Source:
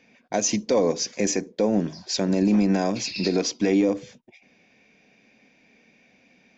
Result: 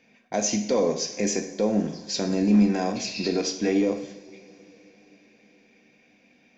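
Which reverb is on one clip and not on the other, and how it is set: two-slope reverb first 0.6 s, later 4.8 s, from -22 dB, DRR 4.5 dB; trim -3 dB

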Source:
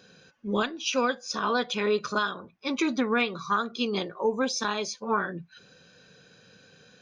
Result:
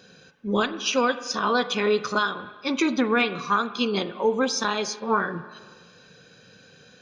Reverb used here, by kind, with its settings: spring tank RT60 1.6 s, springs 40/51 ms, chirp 55 ms, DRR 13 dB; trim +3.5 dB

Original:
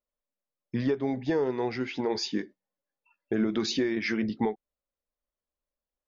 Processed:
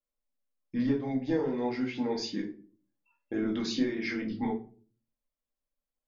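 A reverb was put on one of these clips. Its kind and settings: simulated room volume 260 m³, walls furnished, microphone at 2.2 m; trim -8 dB

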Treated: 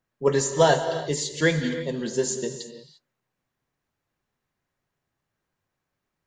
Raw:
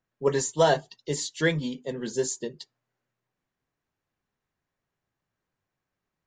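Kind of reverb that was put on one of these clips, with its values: gated-style reverb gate 370 ms flat, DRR 7.5 dB; trim +2.5 dB

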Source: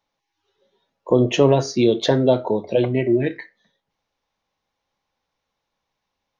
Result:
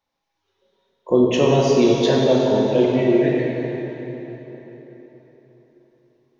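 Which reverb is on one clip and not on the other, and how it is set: plate-style reverb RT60 4.1 s, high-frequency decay 0.75×, DRR -3.5 dB; trim -3.5 dB

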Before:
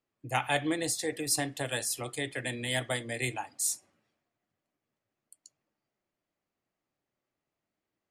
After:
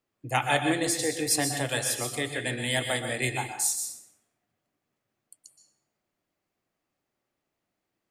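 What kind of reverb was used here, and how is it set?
plate-style reverb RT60 0.52 s, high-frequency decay 1×, pre-delay 110 ms, DRR 5.5 dB; trim +3.5 dB

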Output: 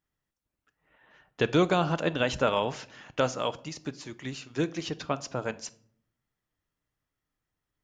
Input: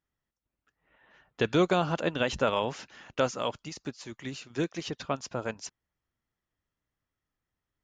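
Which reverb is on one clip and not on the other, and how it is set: simulated room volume 950 m³, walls furnished, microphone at 0.46 m; trim +1 dB

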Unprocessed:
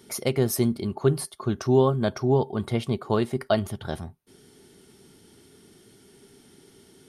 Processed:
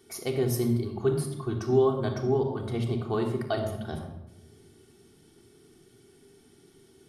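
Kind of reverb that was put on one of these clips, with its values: simulated room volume 4000 m³, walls furnished, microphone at 3.5 m; trim -8 dB

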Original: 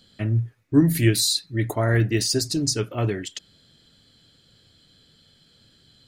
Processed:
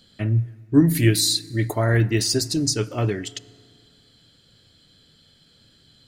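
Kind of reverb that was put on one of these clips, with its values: FDN reverb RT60 2 s, low-frequency decay 1×, high-frequency decay 0.6×, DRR 19.5 dB; trim +1 dB

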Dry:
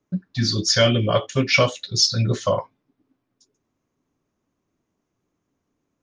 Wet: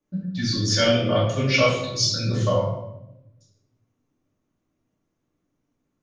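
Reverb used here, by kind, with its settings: simulated room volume 280 m³, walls mixed, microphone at 2.4 m; trim -9 dB

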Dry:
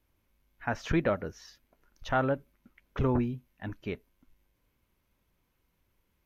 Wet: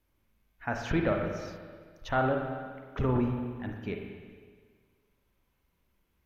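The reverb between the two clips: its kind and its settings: spring tank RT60 1.7 s, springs 41/46/55 ms, chirp 25 ms, DRR 2.5 dB; trim -1.5 dB

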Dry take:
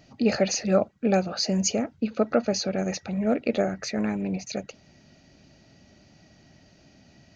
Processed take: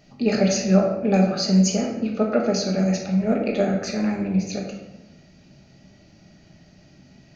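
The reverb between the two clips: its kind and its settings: simulated room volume 410 m³, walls mixed, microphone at 1.3 m; trim -1 dB

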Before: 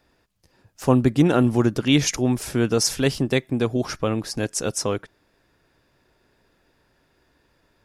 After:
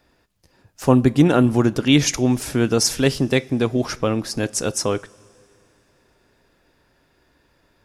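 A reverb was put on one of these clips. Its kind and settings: two-slope reverb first 0.26 s, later 3 s, from -18 dB, DRR 16 dB; trim +2.5 dB

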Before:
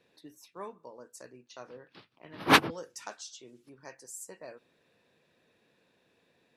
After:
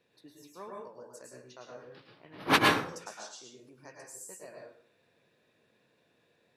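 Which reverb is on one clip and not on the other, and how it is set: plate-style reverb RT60 0.54 s, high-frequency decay 0.7×, pre-delay 95 ms, DRR -1 dB; trim -4 dB

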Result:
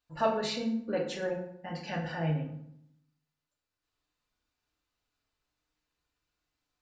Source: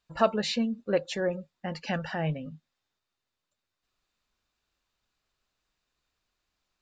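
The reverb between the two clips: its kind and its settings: FDN reverb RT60 0.72 s, low-frequency decay 1.35×, high-frequency decay 0.65×, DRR -2 dB; trim -7.5 dB

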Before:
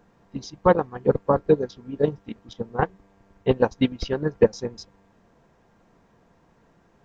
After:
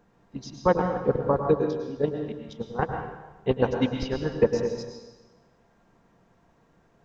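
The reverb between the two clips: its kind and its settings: plate-style reverb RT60 1.1 s, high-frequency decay 1×, pre-delay 90 ms, DRR 3.5 dB; trim -4 dB

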